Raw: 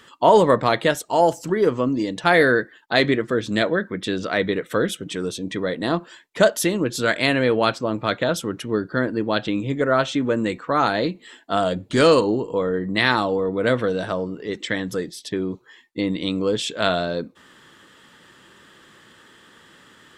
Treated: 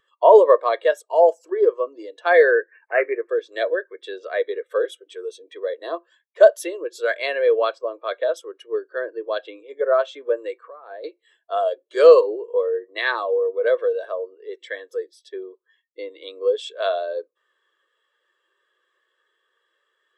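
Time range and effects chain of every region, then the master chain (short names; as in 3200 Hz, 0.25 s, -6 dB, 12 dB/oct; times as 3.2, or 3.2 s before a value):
2.51–3.29 careless resampling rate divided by 8×, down none, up filtered + upward compressor, threshold -27 dBFS
10.64–11.04 tape spacing loss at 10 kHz 23 dB + negative-ratio compressor -31 dBFS
whole clip: steep high-pass 350 Hz 48 dB/oct; comb 1.8 ms, depth 35%; spectral expander 1.5:1; gain +1.5 dB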